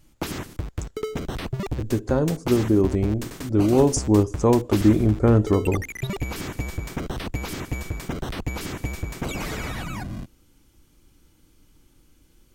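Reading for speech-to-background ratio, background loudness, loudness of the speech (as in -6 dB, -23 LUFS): 11.0 dB, -32.0 LUFS, -21.0 LUFS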